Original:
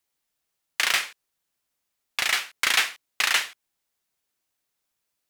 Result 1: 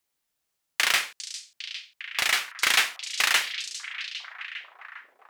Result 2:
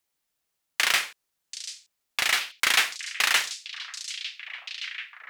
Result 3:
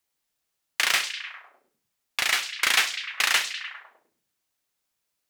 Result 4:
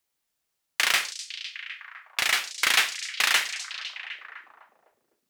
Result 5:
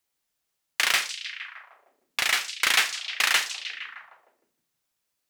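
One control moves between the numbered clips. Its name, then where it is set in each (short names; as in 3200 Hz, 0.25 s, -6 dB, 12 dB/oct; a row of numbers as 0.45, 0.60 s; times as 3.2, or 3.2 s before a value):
delay with a stepping band-pass, time: 0.403, 0.736, 0.101, 0.253, 0.154 s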